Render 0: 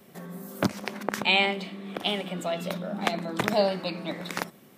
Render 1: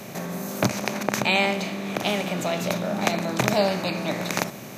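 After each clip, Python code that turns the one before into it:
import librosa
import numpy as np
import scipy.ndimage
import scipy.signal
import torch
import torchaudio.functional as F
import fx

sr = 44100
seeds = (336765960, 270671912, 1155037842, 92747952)

y = fx.bin_compress(x, sr, power=0.6)
y = fx.graphic_eq_31(y, sr, hz=(125, 3150, 6300, 12500), db=(8, -7, 11, 7))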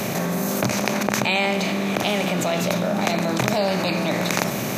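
y = fx.env_flatten(x, sr, amount_pct=70)
y = F.gain(torch.from_numpy(y), -2.0).numpy()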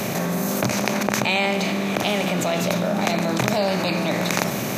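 y = x + 10.0 ** (-20.5 / 20.0) * np.pad(x, (int(149 * sr / 1000.0), 0))[:len(x)]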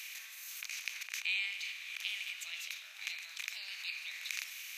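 y = fx.ladder_highpass(x, sr, hz=2100.0, resonance_pct=45)
y = F.gain(torch.from_numpy(y), -7.5).numpy()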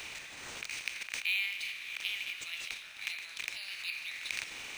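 y = np.interp(np.arange(len(x)), np.arange(len(x))[::3], x[::3])
y = F.gain(torch.from_numpy(y), 3.5).numpy()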